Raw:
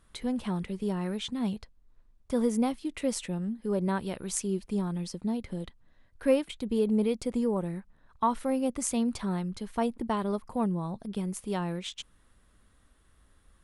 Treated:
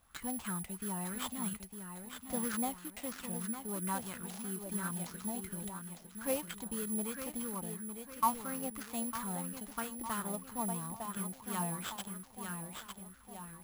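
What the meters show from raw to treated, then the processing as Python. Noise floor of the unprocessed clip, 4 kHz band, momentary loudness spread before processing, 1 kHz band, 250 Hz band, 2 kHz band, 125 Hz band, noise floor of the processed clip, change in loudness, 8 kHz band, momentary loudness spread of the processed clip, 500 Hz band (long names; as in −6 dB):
−63 dBFS, −6.0 dB, 8 LU, −3.5 dB, −10.5 dB, −1.5 dB, −8.5 dB, −56 dBFS, −7.5 dB, +1.5 dB, 9 LU, −13.0 dB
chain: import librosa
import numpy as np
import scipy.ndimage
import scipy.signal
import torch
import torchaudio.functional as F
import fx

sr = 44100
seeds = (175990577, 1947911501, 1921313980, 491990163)

y = fx.dead_time(x, sr, dead_ms=0.072)
y = fx.highpass(y, sr, hz=61.0, slope=6)
y = fx.peak_eq(y, sr, hz=530.0, db=-13.5, octaves=2.6)
y = fx.echo_feedback(y, sr, ms=905, feedback_pct=42, wet_db=-7)
y = (np.kron(y[::4], np.eye(4)[0]) * 4)[:len(y)]
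y = fx.high_shelf(y, sr, hz=9400.0, db=-10.0)
y = fx.rider(y, sr, range_db=4, speed_s=2.0)
y = fx.bell_lfo(y, sr, hz=3.0, low_hz=680.0, high_hz=1500.0, db=14)
y = y * 10.0 ** (-4.5 / 20.0)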